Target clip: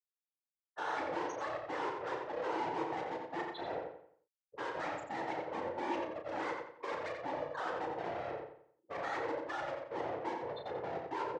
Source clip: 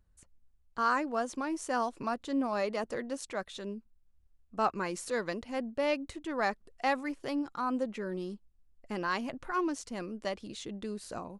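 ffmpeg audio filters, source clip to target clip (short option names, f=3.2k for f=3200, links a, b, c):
-filter_complex "[0:a]afftfilt=real='re*gte(hypot(re,im),0.0398)':imag='im*gte(hypot(re,im),0.0398)':win_size=1024:overlap=0.75,agate=range=-9dB:threshold=-50dB:ratio=16:detection=peak,alimiter=level_in=1dB:limit=-24dB:level=0:latency=1:release=61,volume=-1dB,areverse,acompressor=threshold=-41dB:ratio=12,areverse,asplit=2[a][b];[b]highpass=f=720:p=1,volume=34dB,asoftclip=type=tanh:threshold=-34dB[c];[a][c]amix=inputs=2:normalize=0,lowpass=f=2.8k:p=1,volume=-6dB,aeval=exprs='val(0)*sin(2*PI*290*n/s)':c=same,afftfilt=real='hypot(re,im)*cos(2*PI*random(0))':imag='hypot(re,im)*sin(2*PI*random(1))':win_size=512:overlap=0.75,highpass=210,equalizer=f=220:t=q:w=4:g=-9,equalizer=f=330:t=q:w=4:g=8,equalizer=f=480:t=q:w=4:g=5,equalizer=f=890:t=q:w=4:g=6,equalizer=f=1.9k:t=q:w=4:g=5,lowpass=f=7.6k:w=0.5412,lowpass=f=7.6k:w=1.3066,asplit=2[d][e];[e]adelay=34,volume=-7dB[f];[d][f]amix=inputs=2:normalize=0,asplit=2[g][h];[h]adelay=88,lowpass=f=4.3k:p=1,volume=-4dB,asplit=2[i][j];[j]adelay=88,lowpass=f=4.3k:p=1,volume=0.39,asplit=2[k][l];[l]adelay=88,lowpass=f=4.3k:p=1,volume=0.39,asplit=2[m][n];[n]adelay=88,lowpass=f=4.3k:p=1,volume=0.39,asplit=2[o][p];[p]adelay=88,lowpass=f=4.3k:p=1,volume=0.39[q];[i][k][m][o][q]amix=inputs=5:normalize=0[r];[g][r]amix=inputs=2:normalize=0,volume=6.5dB"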